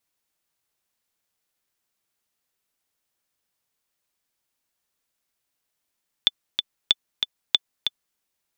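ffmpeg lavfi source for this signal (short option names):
-f lavfi -i "aevalsrc='pow(10,(-3-6*gte(mod(t,2*60/188),60/188))/20)*sin(2*PI*3500*mod(t,60/188))*exp(-6.91*mod(t,60/188)/0.03)':d=1.91:s=44100"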